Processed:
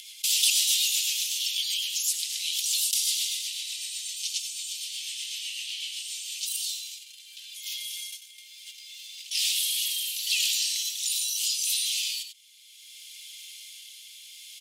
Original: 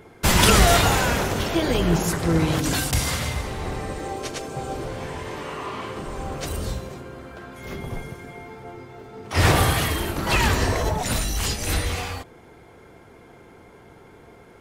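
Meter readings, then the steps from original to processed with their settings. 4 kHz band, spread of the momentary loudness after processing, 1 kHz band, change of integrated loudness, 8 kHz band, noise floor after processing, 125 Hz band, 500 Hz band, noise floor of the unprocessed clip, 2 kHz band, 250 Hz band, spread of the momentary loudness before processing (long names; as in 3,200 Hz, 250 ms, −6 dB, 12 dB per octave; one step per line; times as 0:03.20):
+2.5 dB, 20 LU, below −40 dB, −3.5 dB, +2.5 dB, −50 dBFS, below −40 dB, below −40 dB, −49 dBFS, −11.5 dB, below −40 dB, 21 LU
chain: noise gate −34 dBFS, range −28 dB
Butterworth high-pass 2,900 Hz 48 dB per octave
upward compression, threshold −45 dBFS
rotating-speaker cabinet horn 8 Hz, later 0.7 Hz, at 0:05.85
slap from a distant wall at 16 metres, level −17 dB
envelope flattener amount 50%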